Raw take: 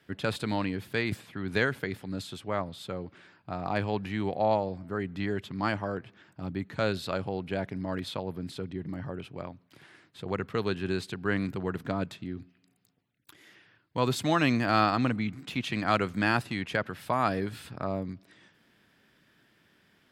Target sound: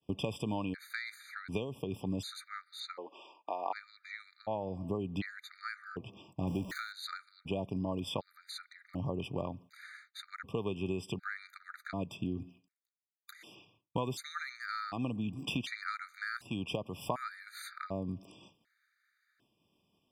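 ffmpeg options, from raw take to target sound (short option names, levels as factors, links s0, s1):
-filter_complex "[0:a]asettb=1/sr,asplit=3[s0][s1][s2];[s0]atrim=end=6.474[s3];[s1]atrim=start=6.47:end=6.92,asetpts=PTS-STARTPTS,afade=t=in:d=0.004:c=qsin,afade=t=out:st=0.446:d=0.004:c=qsin,aeval=exprs='val(0)+0.5*0.0126*sgn(val(0))':c=same[s4];[s2]atrim=start=6.916[s5];[s3][s4]acrossfade=d=0.004:c1=hsin:c2=qsin[s6];[s6][s5]acrossfade=d=0.004:c1=qsin:c2=hsin,agate=range=0.0224:threshold=0.002:ratio=3:detection=peak,acompressor=threshold=0.0141:ratio=10,asettb=1/sr,asplit=3[s7][s8][s9];[s7]atrim=end=2.804[s10];[s8]atrim=start=2.8:end=4.2,asetpts=PTS-STARTPTS,afade=t=in:d=0.004:c=qsin,afade=t=out:st=1.396:d=0.004:c=qsin,highpass=f=390:w=0.5412,highpass=f=390:w=1.3066,equalizer=f=410:t=q:w=4:g=-3,equalizer=f=930:t=q:w=4:g=6,equalizer=f=1600:t=q:w=4:g=-6,equalizer=f=5800:t=q:w=4:g=-5,lowpass=f=6700:w=0.5412,lowpass=f=6700:w=1.3066[s11];[s9]atrim=start=4.196[s12];[s10][s11]acrossfade=d=0.004:c1=hsin:c2=qsin[s13];[s13][s12]acrossfade=d=0.004:c1=qsin:c2=hsin,afftfilt=real='re*gt(sin(2*PI*0.67*pts/sr)*(1-2*mod(floor(b*sr/1024/1200),2)),0)':imag='im*gt(sin(2*PI*0.67*pts/sr)*(1-2*mod(floor(b*sr/1024/1200),2)),0)':win_size=1024:overlap=0.75,volume=2.11"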